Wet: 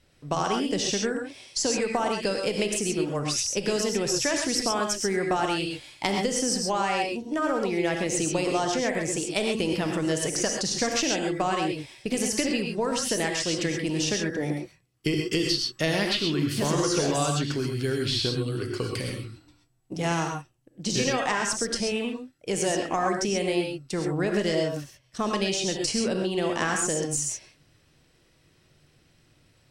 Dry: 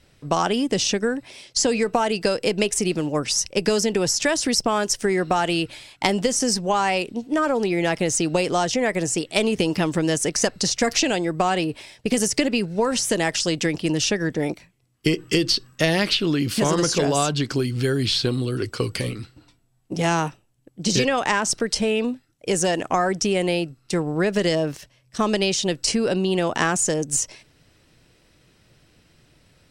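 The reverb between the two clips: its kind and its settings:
reverb whose tail is shaped and stops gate 150 ms rising, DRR 2 dB
level −6.5 dB

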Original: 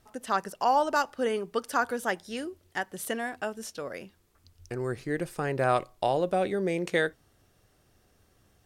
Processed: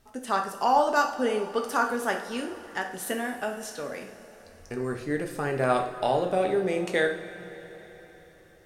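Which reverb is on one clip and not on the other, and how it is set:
coupled-rooms reverb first 0.5 s, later 4.4 s, from −16 dB, DRR 2.5 dB

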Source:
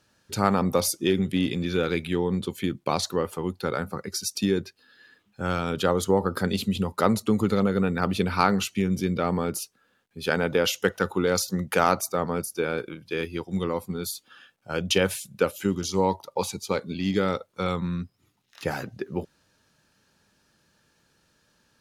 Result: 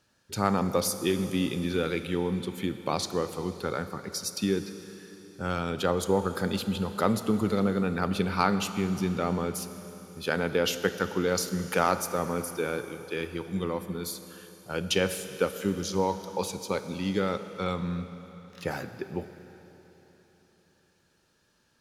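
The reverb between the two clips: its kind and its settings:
four-comb reverb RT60 3.8 s, combs from 27 ms, DRR 10 dB
level −3.5 dB

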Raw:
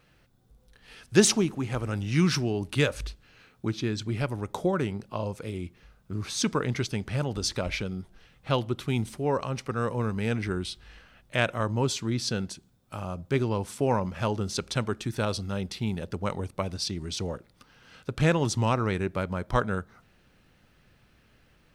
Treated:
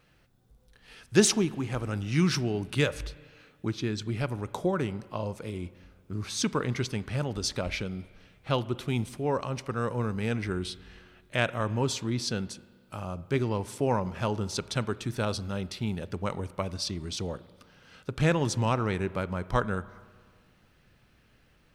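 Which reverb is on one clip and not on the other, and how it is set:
spring reverb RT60 1.8 s, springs 33/47 ms, chirp 65 ms, DRR 17.5 dB
level −1.5 dB

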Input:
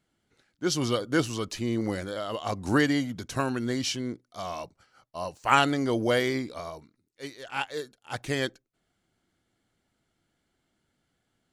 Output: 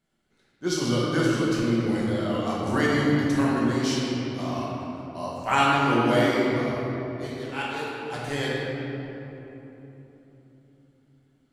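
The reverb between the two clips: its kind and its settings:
rectangular room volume 220 cubic metres, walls hard, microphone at 1.1 metres
level −4.5 dB

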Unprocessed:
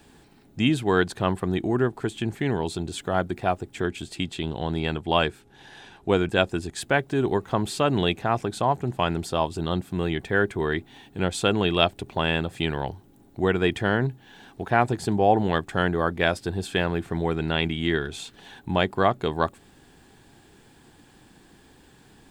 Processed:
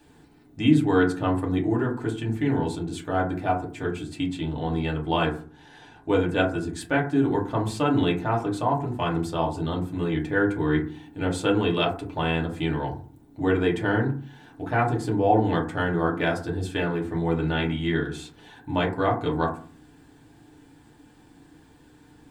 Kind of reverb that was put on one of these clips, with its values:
feedback delay network reverb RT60 0.42 s, low-frequency decay 1.5×, high-frequency decay 0.35×, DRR −2.5 dB
level −6.5 dB

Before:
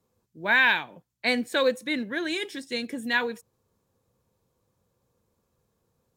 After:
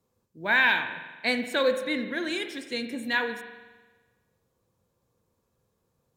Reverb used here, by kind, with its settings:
spring reverb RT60 1.3 s, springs 43 ms, chirp 45 ms, DRR 7.5 dB
level −1.5 dB

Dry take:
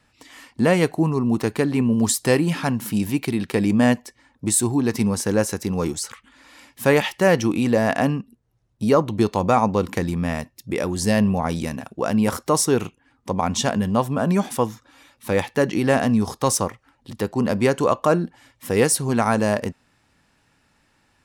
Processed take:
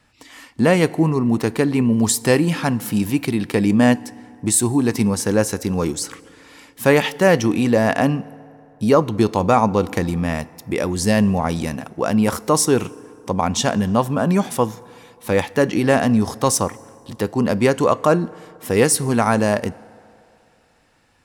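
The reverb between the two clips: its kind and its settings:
feedback delay network reverb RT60 2.9 s, low-frequency decay 0.75×, high-frequency decay 0.5×, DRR 19.5 dB
level +2.5 dB

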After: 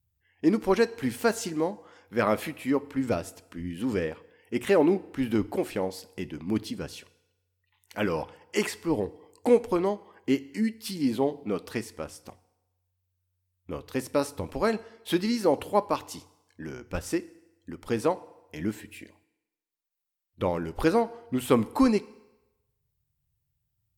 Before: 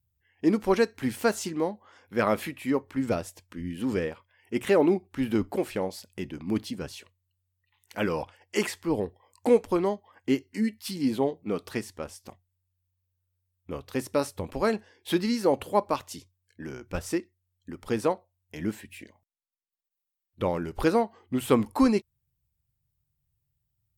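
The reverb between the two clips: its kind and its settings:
feedback delay network reverb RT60 1 s, low-frequency decay 0.8×, high-frequency decay 0.9×, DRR 17 dB

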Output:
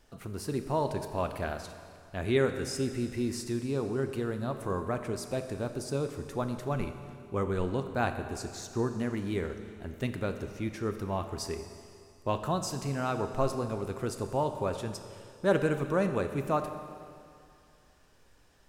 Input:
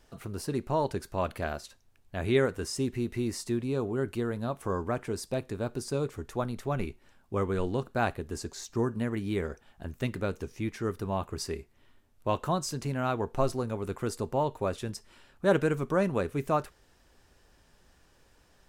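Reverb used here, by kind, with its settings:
four-comb reverb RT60 2.4 s, combs from 29 ms, DRR 8 dB
level −1.5 dB

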